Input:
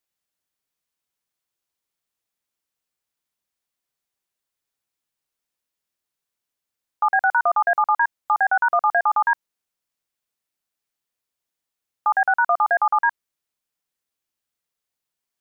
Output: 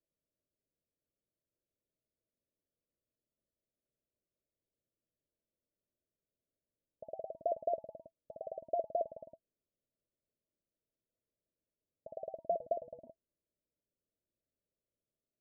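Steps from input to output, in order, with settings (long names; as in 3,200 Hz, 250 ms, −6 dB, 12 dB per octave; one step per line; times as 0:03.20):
0:12.46–0:13.07: treble cut that deepens with the level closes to 340 Hz, closed at −13.5 dBFS
Chebyshev low-pass filter 660 Hz, order 10
level +3 dB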